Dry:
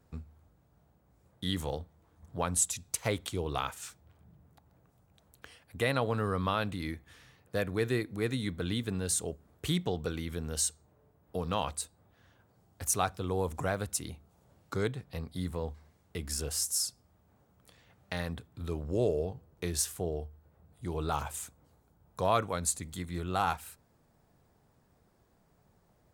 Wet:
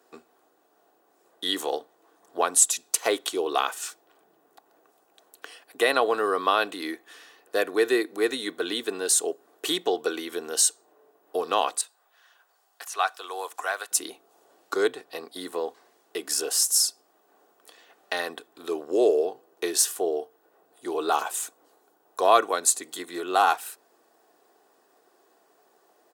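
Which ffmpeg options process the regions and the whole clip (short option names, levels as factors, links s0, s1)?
-filter_complex "[0:a]asettb=1/sr,asplit=3[s0][s1][s2];[s0]atrim=end=11.814[s3];[s1]atrim=start=11.81:end=13.91,asetpts=PTS-STARTPTS,afade=t=in:d=0.004:c=qsin,afade=t=out:st=2.096:d=0.004:c=qsin,highpass=1000,acrossover=split=3600[s4][s5];[s5]acompressor=threshold=0.00316:ratio=4:attack=1:release=60[s6];[s4][s6]amix=inputs=2:normalize=0[s7];[s2]atrim=start=13.906[s8];[s3][s7]acrossfade=d=0.004:c1=hsin:c2=qsin[s9];[s9][s8]acrossfade=d=0.004:c1=qsin:c2=hsin,highpass=f=340:w=0.5412,highpass=f=340:w=1.3066,bandreject=f=2200:w=11,aecho=1:1:2.7:0.36,volume=2.82"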